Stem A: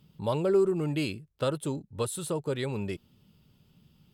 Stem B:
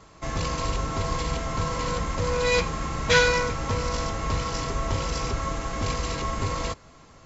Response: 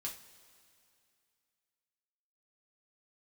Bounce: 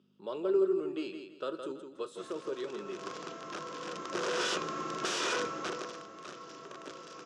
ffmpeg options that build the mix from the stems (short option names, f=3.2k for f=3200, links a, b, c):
-filter_complex "[0:a]equalizer=f=95:w=0.69:g=-11.5,volume=-10dB,asplit=4[a][b][c][d];[b]volume=-5dB[e];[c]volume=-5dB[f];[1:a]aeval=exprs='(mod(8.91*val(0)+1,2)-1)/8.91':c=same,adelay=1950,volume=-5dB,afade=t=in:st=3.82:d=0.66:silence=0.446684,afade=t=out:st=5.41:d=0.62:silence=0.251189,asplit=2[g][h];[h]volume=-23dB[i];[d]apad=whole_len=406111[j];[g][j]sidechaincompress=threshold=-51dB:ratio=8:attack=44:release=216[k];[2:a]atrim=start_sample=2205[l];[e][l]afir=irnorm=-1:irlink=0[m];[f][i]amix=inputs=2:normalize=0,aecho=0:1:165|330|495|660:1|0.3|0.09|0.027[n];[a][k][m][n]amix=inputs=4:normalize=0,aeval=exprs='val(0)+0.00178*(sin(2*PI*50*n/s)+sin(2*PI*2*50*n/s)/2+sin(2*PI*3*50*n/s)/3+sin(2*PI*4*50*n/s)/4+sin(2*PI*5*50*n/s)/5)':c=same,highpass=f=200:w=0.5412,highpass=f=200:w=1.3066,equalizer=f=240:t=q:w=4:g=-6,equalizer=f=360:t=q:w=4:g=9,equalizer=f=840:t=q:w=4:g=-8,equalizer=f=1.3k:t=q:w=4:g=5,equalizer=f=2.1k:t=q:w=4:g=-8,equalizer=f=4.3k:t=q:w=4:g=-6,lowpass=f=6.1k:w=0.5412,lowpass=f=6.1k:w=1.3066"